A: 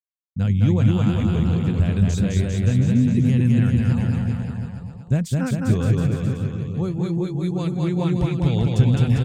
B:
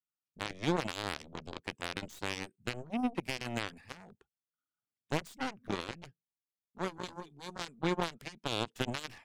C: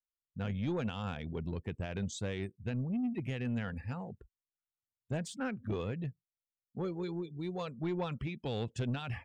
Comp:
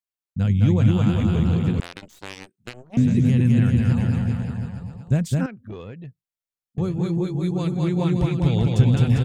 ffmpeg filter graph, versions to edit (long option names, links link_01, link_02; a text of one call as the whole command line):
ffmpeg -i take0.wav -i take1.wav -i take2.wav -filter_complex "[0:a]asplit=3[link_01][link_02][link_03];[link_01]atrim=end=1.802[link_04];[1:a]atrim=start=1.798:end=2.972[link_05];[link_02]atrim=start=2.968:end=5.462[link_06];[2:a]atrim=start=5.458:end=6.782[link_07];[link_03]atrim=start=6.778[link_08];[link_04][link_05]acrossfade=duration=0.004:curve1=hsin:curve2=hsin[link_09];[link_09][link_06]acrossfade=duration=0.004:curve1=hsin:curve2=hsin[link_10];[link_10][link_07]acrossfade=duration=0.004:curve1=hsin:curve2=hsin[link_11];[link_11][link_08]acrossfade=duration=0.004:curve1=hsin:curve2=hsin" out.wav